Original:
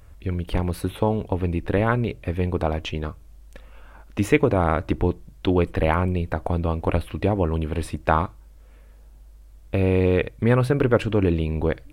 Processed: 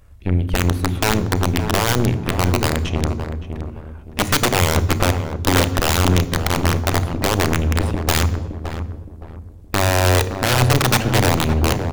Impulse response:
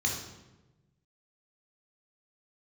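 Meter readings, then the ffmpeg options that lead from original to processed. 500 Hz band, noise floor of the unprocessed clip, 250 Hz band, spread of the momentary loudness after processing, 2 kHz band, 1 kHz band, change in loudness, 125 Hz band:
+0.5 dB, -47 dBFS, +2.5 dB, 13 LU, +8.5 dB, +5.5 dB, +4.5 dB, +5.5 dB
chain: -filter_complex "[0:a]aeval=exprs='(mod(4.73*val(0)+1,2)-1)/4.73':c=same,aeval=exprs='0.224*(cos(1*acos(clip(val(0)/0.224,-1,1)))-cos(1*PI/2))+0.0355*(cos(3*acos(clip(val(0)/0.224,-1,1)))-cos(3*PI/2))+0.0398*(cos(4*acos(clip(val(0)/0.224,-1,1)))-cos(4*PI/2))':c=same,asplit=2[a][b];[b]adelay=567,lowpass=f=980:p=1,volume=-7dB,asplit=2[c][d];[d]adelay=567,lowpass=f=980:p=1,volume=0.36,asplit=2[e][f];[f]adelay=567,lowpass=f=980:p=1,volume=0.36,asplit=2[g][h];[h]adelay=567,lowpass=f=980:p=1,volume=0.36[i];[a][c][e][g][i]amix=inputs=5:normalize=0,asplit=2[j][k];[1:a]atrim=start_sample=2205,lowshelf=f=440:g=9,adelay=32[l];[k][l]afir=irnorm=-1:irlink=0,volume=-21.5dB[m];[j][m]amix=inputs=2:normalize=0,volume=4.5dB"

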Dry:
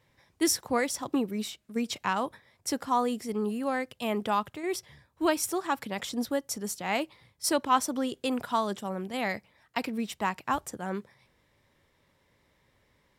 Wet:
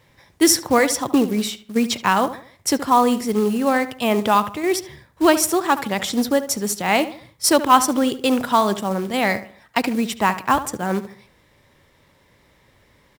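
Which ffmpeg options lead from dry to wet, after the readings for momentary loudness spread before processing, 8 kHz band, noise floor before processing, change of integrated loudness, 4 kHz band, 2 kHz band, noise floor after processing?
8 LU, +11.0 dB, -70 dBFS, +11.0 dB, +11.0 dB, +11.0 dB, -58 dBFS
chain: -filter_complex "[0:a]acontrast=67,asplit=2[a][b];[b]adelay=73,lowpass=f=2.4k:p=1,volume=-12.5dB,asplit=2[c][d];[d]adelay=73,lowpass=f=2.4k:p=1,volume=0.38,asplit=2[e][f];[f]adelay=73,lowpass=f=2.4k:p=1,volume=0.38,asplit=2[g][h];[h]adelay=73,lowpass=f=2.4k:p=1,volume=0.38[i];[a][c][e][g][i]amix=inputs=5:normalize=0,acrusher=bits=5:mode=log:mix=0:aa=0.000001,volume=4.5dB"

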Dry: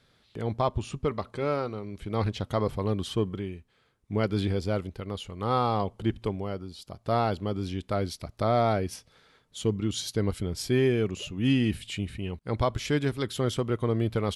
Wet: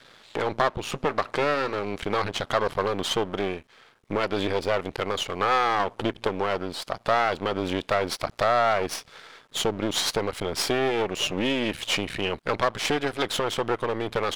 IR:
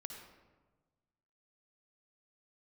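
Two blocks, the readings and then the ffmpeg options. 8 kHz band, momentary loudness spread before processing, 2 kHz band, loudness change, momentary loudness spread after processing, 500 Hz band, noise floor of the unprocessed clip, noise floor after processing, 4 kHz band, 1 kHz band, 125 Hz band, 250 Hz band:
+7.0 dB, 11 LU, +10.5 dB, +3.0 dB, 7 LU, +3.5 dB, -66 dBFS, -56 dBFS, +9.0 dB, +6.0 dB, -7.5 dB, -2.0 dB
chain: -filter_complex "[0:a]acompressor=threshold=-31dB:ratio=6,aeval=exprs='max(val(0),0)':c=same,asplit=2[a][b];[b]highpass=f=720:p=1,volume=20dB,asoftclip=type=tanh:threshold=-7.5dB[c];[a][c]amix=inputs=2:normalize=0,lowpass=f=3.3k:p=1,volume=-6dB,volume=6.5dB"

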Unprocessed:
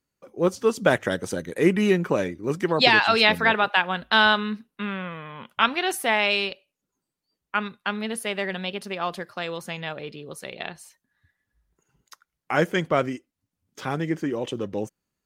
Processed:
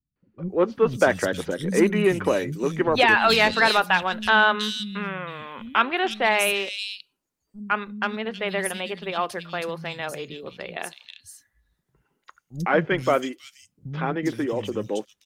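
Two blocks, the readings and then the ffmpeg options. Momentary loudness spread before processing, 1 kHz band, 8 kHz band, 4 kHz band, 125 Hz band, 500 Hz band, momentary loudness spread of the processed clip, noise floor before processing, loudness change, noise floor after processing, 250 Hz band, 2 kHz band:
17 LU, +1.5 dB, +3.0 dB, -1.5 dB, 0.0 dB, +1.5 dB, 17 LU, -84 dBFS, +0.5 dB, -79 dBFS, 0.0 dB, +1.0 dB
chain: -filter_complex "[0:a]aeval=exprs='0.668*(cos(1*acos(clip(val(0)/0.668,-1,1)))-cos(1*PI/2))+0.0473*(cos(5*acos(clip(val(0)/0.668,-1,1)))-cos(5*PI/2))':c=same,acrossover=split=210|3400[a][b][c];[b]adelay=160[d];[c]adelay=480[e];[a][d][e]amix=inputs=3:normalize=0"

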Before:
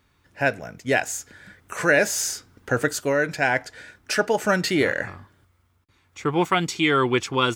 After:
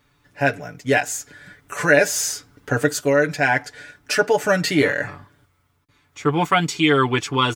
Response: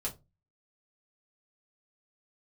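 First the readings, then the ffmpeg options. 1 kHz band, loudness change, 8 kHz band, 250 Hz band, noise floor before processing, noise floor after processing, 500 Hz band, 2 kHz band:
+3.0 dB, +3.0 dB, +2.5 dB, +3.0 dB, -64 dBFS, -64 dBFS, +3.5 dB, +2.5 dB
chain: -af "aecho=1:1:6.9:0.7,volume=1dB"

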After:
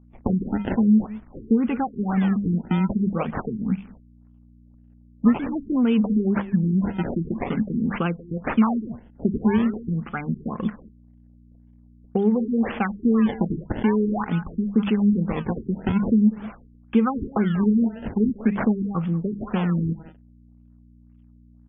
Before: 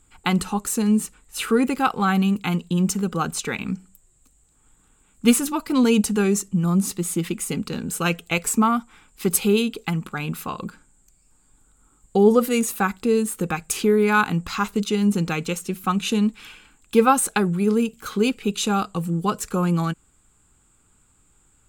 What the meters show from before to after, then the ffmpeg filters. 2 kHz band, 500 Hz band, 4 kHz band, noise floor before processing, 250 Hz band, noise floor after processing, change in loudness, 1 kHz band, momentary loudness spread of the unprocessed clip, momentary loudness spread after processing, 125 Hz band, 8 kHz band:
-8.0 dB, -6.0 dB, under -10 dB, -61 dBFS, +1.5 dB, -52 dBFS, -1.0 dB, -6.5 dB, 10 LU, 9 LU, +0.5 dB, under -40 dB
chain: -filter_complex "[0:a]acrusher=bits=8:mix=0:aa=0.000001,aphaser=in_gain=1:out_gain=1:delay=1.9:decay=0.31:speed=0.75:type=triangular,bandreject=f=50:t=h:w=6,bandreject=f=100:t=h:w=6,bandreject=f=150:t=h:w=6,bandreject=f=200:t=h:w=6,asplit=2[a][b];[b]adelay=190,highpass=300,lowpass=3.4k,asoftclip=type=hard:threshold=-11dB,volume=-17dB[c];[a][c]amix=inputs=2:normalize=0,acrusher=samples=22:mix=1:aa=0.000001:lfo=1:lforange=35.2:lforate=0.46,agate=range=-21dB:threshold=-48dB:ratio=16:detection=peak,aeval=exprs='val(0)+0.00282*(sin(2*PI*60*n/s)+sin(2*PI*2*60*n/s)/2+sin(2*PI*3*60*n/s)/3+sin(2*PI*4*60*n/s)/4+sin(2*PI*5*60*n/s)/5)':c=same,acompressor=threshold=-21dB:ratio=5,equalizer=f=220:t=o:w=0.36:g=9,afftfilt=real='re*lt(b*sr/1024,420*pow(3600/420,0.5+0.5*sin(2*PI*1.9*pts/sr)))':imag='im*lt(b*sr/1024,420*pow(3600/420,0.5+0.5*sin(2*PI*1.9*pts/sr)))':win_size=1024:overlap=0.75"

